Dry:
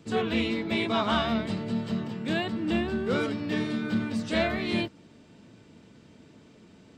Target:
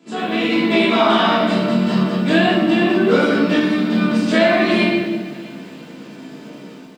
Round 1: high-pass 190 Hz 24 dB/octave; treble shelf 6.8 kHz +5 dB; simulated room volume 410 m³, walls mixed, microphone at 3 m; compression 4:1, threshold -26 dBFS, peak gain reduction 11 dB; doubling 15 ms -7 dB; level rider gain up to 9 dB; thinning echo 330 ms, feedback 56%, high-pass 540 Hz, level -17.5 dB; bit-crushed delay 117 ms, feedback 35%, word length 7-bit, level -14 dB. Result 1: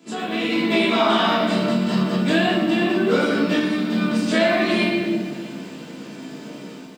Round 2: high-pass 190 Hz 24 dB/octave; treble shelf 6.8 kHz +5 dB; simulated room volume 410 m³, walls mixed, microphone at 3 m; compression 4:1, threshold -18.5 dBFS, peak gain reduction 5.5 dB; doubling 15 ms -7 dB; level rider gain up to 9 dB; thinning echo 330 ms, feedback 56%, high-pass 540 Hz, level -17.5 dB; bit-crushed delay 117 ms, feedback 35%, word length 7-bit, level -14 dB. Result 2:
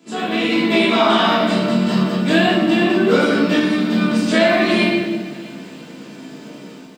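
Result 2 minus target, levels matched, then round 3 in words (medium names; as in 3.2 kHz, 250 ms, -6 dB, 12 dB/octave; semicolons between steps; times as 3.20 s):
8 kHz band +4.5 dB
high-pass 190 Hz 24 dB/octave; treble shelf 6.8 kHz -4.5 dB; simulated room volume 410 m³, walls mixed, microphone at 3 m; compression 4:1, threshold -18.5 dBFS, peak gain reduction 5.5 dB; doubling 15 ms -7 dB; level rider gain up to 9 dB; thinning echo 330 ms, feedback 56%, high-pass 540 Hz, level -17.5 dB; bit-crushed delay 117 ms, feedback 35%, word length 7-bit, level -14 dB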